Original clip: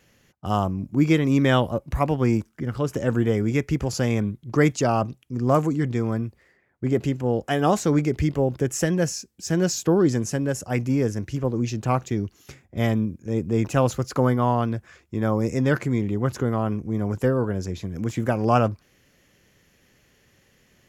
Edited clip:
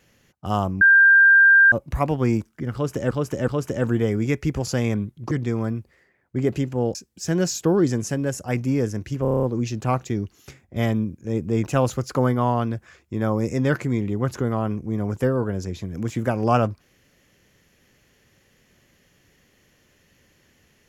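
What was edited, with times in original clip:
0:00.81–0:01.72: beep over 1,590 Hz −9.5 dBFS
0:02.74–0:03.11: repeat, 3 plays
0:04.57–0:05.79: remove
0:07.43–0:09.17: remove
0:11.44: stutter 0.03 s, 8 plays

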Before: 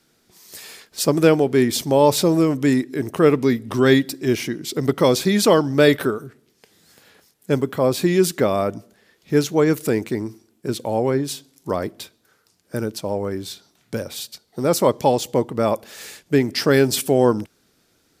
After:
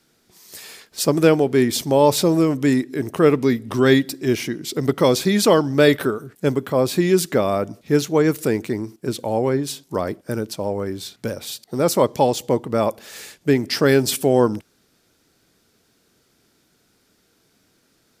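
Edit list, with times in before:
truncate silence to 0.13 s

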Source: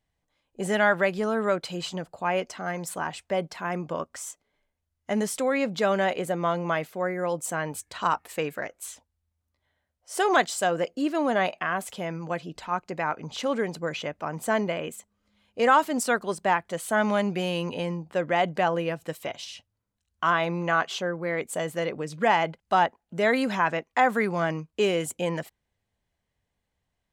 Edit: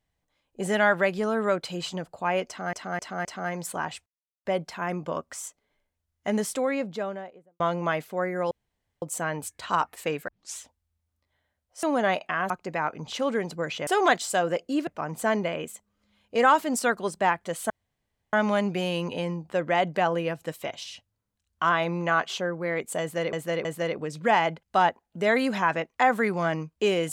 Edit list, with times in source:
0:02.47–0:02.73: repeat, 4 plays
0:03.28: splice in silence 0.39 s
0:05.22–0:06.43: fade out and dull
0:07.34: splice in room tone 0.51 s
0:08.60: tape start 0.30 s
0:10.15–0:11.15: move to 0:14.11
0:11.82–0:12.74: remove
0:16.94: splice in room tone 0.63 s
0:21.62–0:21.94: repeat, 3 plays

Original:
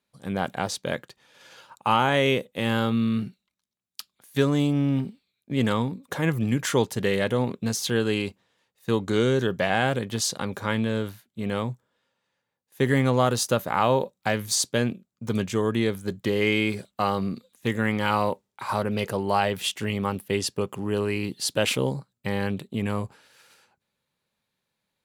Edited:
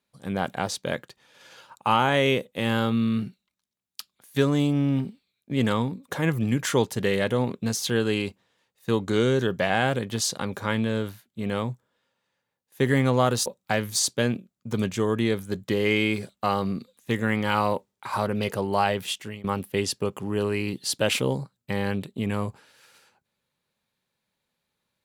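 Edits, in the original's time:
0:13.46–0:14.02: remove
0:19.36–0:20.00: fade out equal-power, to −20 dB

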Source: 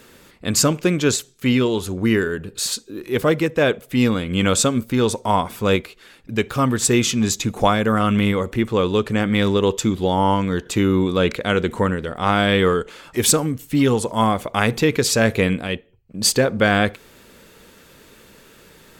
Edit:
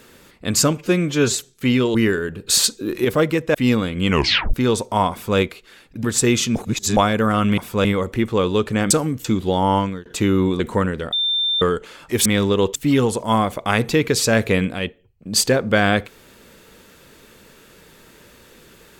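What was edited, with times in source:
0:00.77–0:01.16: time-stretch 1.5×
0:01.75–0:02.03: remove
0:02.56–0:03.13: clip gain +7.5 dB
0:03.63–0:03.88: remove
0:04.43: tape stop 0.44 s
0:05.45–0:05.72: duplicate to 0:08.24
0:06.37–0:06.70: remove
0:07.22–0:07.63: reverse
0:09.30–0:09.80: swap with 0:13.30–0:13.64
0:10.36–0:10.61: fade out
0:11.15–0:11.64: remove
0:12.17–0:12.66: beep over 3,580 Hz −17 dBFS

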